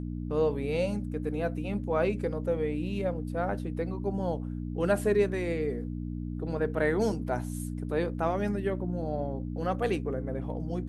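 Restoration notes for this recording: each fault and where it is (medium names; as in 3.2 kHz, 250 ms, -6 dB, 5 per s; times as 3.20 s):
hum 60 Hz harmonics 5 -35 dBFS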